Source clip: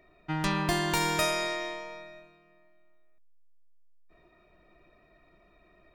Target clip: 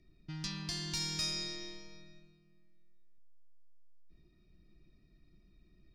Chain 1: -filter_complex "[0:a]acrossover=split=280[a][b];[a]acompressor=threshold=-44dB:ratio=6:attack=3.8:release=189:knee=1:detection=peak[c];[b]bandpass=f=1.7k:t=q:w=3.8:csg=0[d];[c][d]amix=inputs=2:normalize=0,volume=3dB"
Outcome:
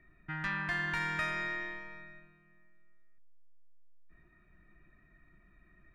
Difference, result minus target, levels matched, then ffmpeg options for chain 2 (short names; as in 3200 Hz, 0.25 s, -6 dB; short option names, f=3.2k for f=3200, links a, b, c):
4000 Hz band -13.0 dB
-filter_complex "[0:a]acrossover=split=280[a][b];[a]acompressor=threshold=-44dB:ratio=6:attack=3.8:release=189:knee=1:detection=peak[c];[b]bandpass=f=5.1k:t=q:w=3.8:csg=0[d];[c][d]amix=inputs=2:normalize=0,volume=3dB"